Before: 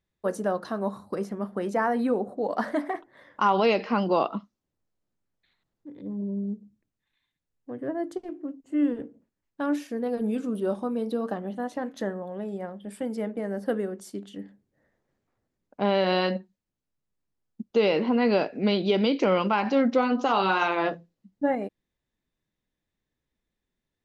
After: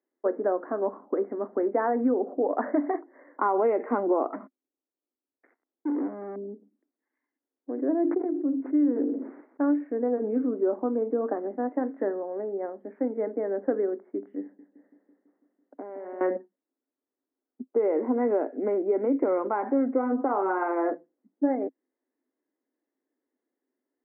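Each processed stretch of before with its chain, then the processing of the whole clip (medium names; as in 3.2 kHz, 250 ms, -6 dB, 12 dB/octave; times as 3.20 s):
4.33–6.36 s: compression 4:1, threshold -40 dBFS + waveshaping leveller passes 5
7.71–9.64 s: careless resampling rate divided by 8×, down none, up hold + decay stretcher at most 51 dB/s
14.42–16.21 s: compression 12:1, threshold -37 dBFS + bucket-brigade echo 166 ms, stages 4096, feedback 69%, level -9 dB
17.63–20.89 s: high-pass 1.1 kHz 6 dB/octave + tilt EQ -4.5 dB/octave
whole clip: Chebyshev band-pass 260–2100 Hz, order 5; tilt EQ -4.5 dB/octave; compression 6:1, threshold -20 dBFS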